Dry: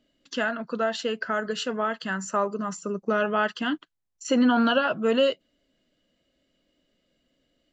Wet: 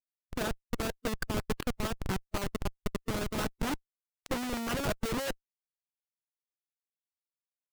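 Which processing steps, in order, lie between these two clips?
Schmitt trigger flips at -22.5 dBFS; harmonic-percussive split harmonic -8 dB

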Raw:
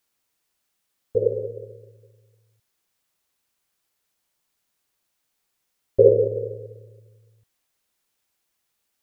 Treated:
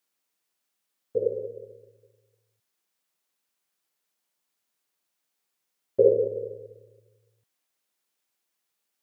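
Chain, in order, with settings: HPF 170 Hz 12 dB/oct; gain -4.5 dB

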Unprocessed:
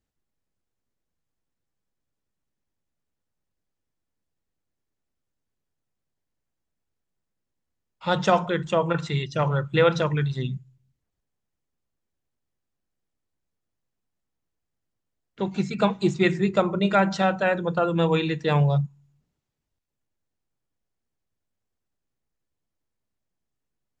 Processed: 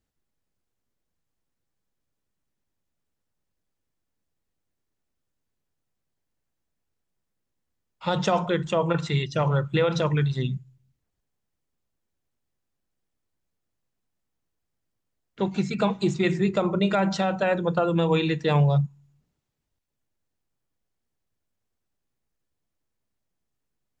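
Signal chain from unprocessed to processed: dynamic EQ 1600 Hz, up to -4 dB, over -35 dBFS, Q 2.1; limiter -14.5 dBFS, peak gain reduction 7.5 dB; gain +1.5 dB

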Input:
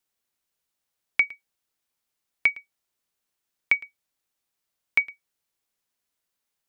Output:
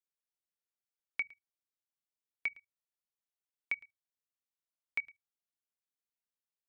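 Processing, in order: notches 50/100/150 Hz; level quantiser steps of 23 dB; gain -8.5 dB

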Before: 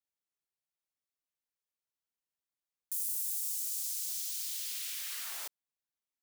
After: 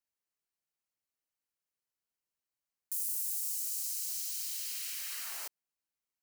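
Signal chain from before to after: notch 3500 Hz, Q 7.4

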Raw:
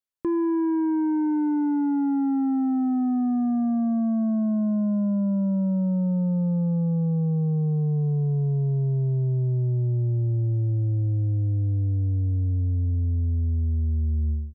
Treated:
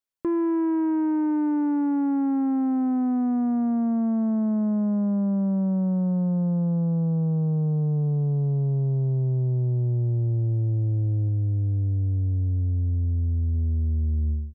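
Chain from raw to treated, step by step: 11.28–13.55 dynamic EQ 420 Hz, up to -3 dB, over -41 dBFS, Q 0.83; Doppler distortion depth 0.2 ms

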